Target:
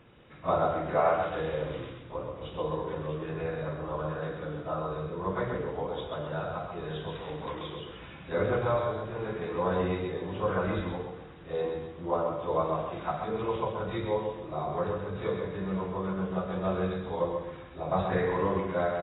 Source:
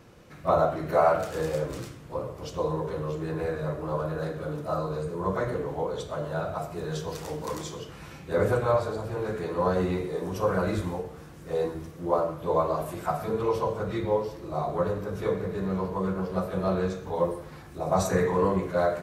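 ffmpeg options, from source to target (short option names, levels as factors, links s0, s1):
-filter_complex "[0:a]highshelf=f=3500:g=10,asplit=2[s0][s1];[s1]aecho=0:1:131|262|393|524:0.501|0.165|0.0546|0.018[s2];[s0][s2]amix=inputs=2:normalize=0,volume=0.596" -ar 16000 -c:a aac -b:a 16k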